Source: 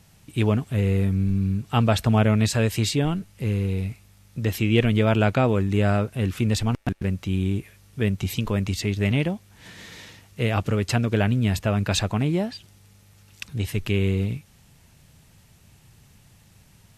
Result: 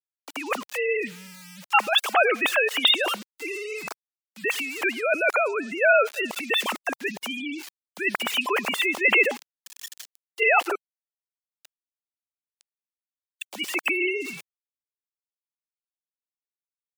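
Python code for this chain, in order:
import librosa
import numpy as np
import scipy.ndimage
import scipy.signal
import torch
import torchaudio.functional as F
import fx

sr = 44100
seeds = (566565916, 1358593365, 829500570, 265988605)

y = fx.sine_speech(x, sr)
y = fx.over_compress(y, sr, threshold_db=-23.0, ratio=-1.0)
y = fx.echo_feedback(y, sr, ms=101, feedback_pct=52, wet_db=-23.5)
y = fx.gate_flip(y, sr, shuts_db=-24.0, range_db=-32, at=(10.75, 13.52))
y = np.where(np.abs(y) >= 10.0 ** (-37.5 / 20.0), y, 0.0)
y = scipy.signal.sosfilt(scipy.signal.butter(2, 570.0, 'highpass', fs=sr, output='sos'), y)
y = fx.high_shelf(y, sr, hz=2800.0, db=11.5)
y = fx.spec_gate(y, sr, threshold_db=-30, keep='strong')
y = fx.band_widen(y, sr, depth_pct=40)
y = F.gain(torch.from_numpy(y), 2.5).numpy()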